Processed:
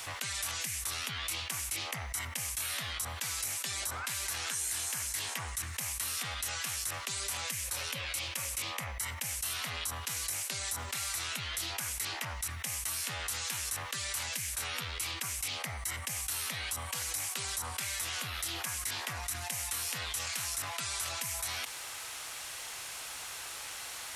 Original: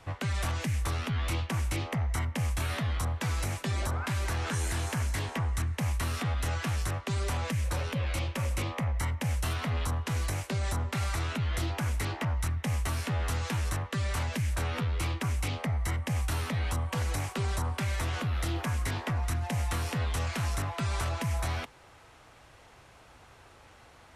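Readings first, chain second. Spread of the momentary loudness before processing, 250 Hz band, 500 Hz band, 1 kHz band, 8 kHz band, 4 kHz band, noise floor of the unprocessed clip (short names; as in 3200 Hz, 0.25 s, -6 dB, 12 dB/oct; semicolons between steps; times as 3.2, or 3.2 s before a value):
1 LU, -16.5 dB, -10.5 dB, -5.0 dB, +8.0 dB, +4.0 dB, -56 dBFS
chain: pre-emphasis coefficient 0.97; fast leveller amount 70%; gain +3.5 dB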